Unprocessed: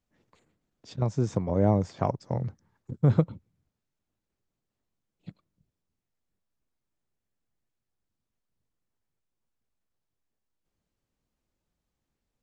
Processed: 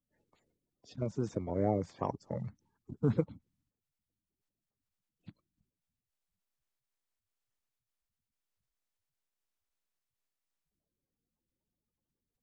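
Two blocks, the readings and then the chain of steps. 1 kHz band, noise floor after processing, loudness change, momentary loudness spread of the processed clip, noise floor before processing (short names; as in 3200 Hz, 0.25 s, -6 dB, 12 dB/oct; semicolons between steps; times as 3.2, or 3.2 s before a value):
-6.5 dB, under -85 dBFS, -8.0 dB, 12 LU, -85 dBFS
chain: bin magnitudes rounded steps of 30 dB; gain -7.5 dB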